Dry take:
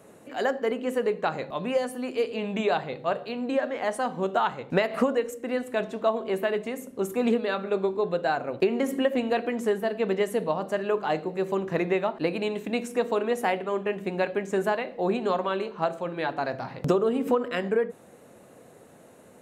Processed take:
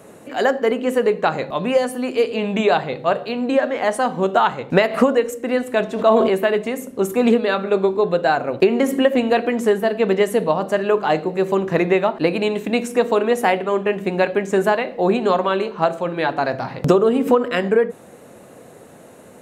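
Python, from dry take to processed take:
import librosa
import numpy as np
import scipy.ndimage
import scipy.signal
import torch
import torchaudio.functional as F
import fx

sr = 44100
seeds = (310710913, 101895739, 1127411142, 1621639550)

y = fx.sustainer(x, sr, db_per_s=30.0, at=(5.92, 6.34))
y = F.gain(torch.from_numpy(y), 8.5).numpy()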